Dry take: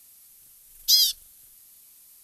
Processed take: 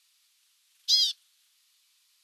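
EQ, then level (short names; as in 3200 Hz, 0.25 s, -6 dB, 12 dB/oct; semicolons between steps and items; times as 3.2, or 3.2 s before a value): Chebyshev band-pass 1000–3700 Hz, order 2; tilt +4.5 dB/oct; -8.0 dB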